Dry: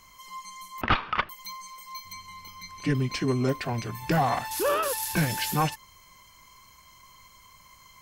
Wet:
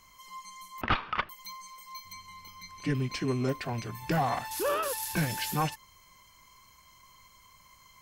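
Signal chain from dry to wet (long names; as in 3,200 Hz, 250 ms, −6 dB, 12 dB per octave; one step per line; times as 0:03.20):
loose part that buzzes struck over −28 dBFS, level −38 dBFS
level −4 dB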